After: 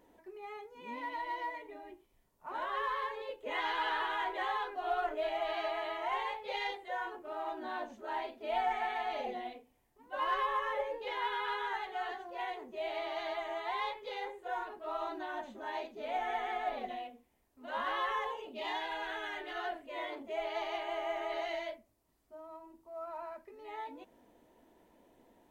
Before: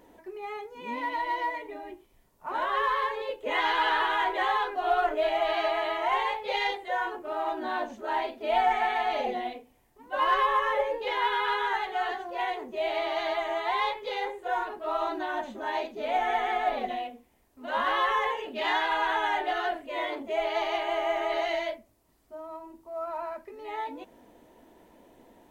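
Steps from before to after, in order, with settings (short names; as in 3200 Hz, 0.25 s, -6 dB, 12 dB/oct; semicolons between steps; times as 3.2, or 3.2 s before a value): 18.23–19.54 bell 2200 Hz -> 720 Hz -13 dB 0.45 oct; gain -8.5 dB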